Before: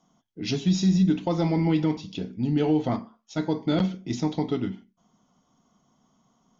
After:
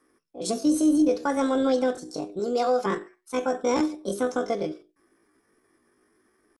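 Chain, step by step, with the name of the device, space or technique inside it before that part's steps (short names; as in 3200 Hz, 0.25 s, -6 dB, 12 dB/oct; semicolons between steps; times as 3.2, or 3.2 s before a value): chipmunk voice (pitch shift +8.5 st); 2.39–2.86 tone controls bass -10 dB, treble +5 dB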